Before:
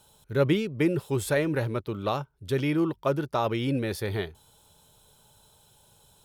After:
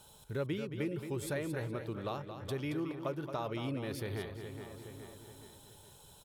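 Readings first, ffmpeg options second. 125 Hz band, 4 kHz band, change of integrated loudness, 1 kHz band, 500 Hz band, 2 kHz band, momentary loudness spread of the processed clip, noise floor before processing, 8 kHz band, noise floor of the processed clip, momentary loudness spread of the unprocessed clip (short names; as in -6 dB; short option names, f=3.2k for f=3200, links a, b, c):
-10.0 dB, -9.5 dB, -11.0 dB, -10.5 dB, -11.0 dB, -10.5 dB, 16 LU, -63 dBFS, -8.0 dB, -58 dBFS, 7 LU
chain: -filter_complex "[0:a]asplit=2[a][b];[b]adelay=418,lowpass=f=3.6k:p=1,volume=-14.5dB,asplit=2[c][d];[d]adelay=418,lowpass=f=3.6k:p=1,volume=0.46,asplit=2[e][f];[f]adelay=418,lowpass=f=3.6k:p=1,volume=0.46,asplit=2[g][h];[h]adelay=418,lowpass=f=3.6k:p=1,volume=0.46[i];[c][e][g][i]amix=inputs=4:normalize=0[j];[a][j]amix=inputs=2:normalize=0,acompressor=threshold=-46dB:ratio=2,asplit=2[k][l];[l]aecho=0:1:224:0.355[m];[k][m]amix=inputs=2:normalize=0,volume=1dB"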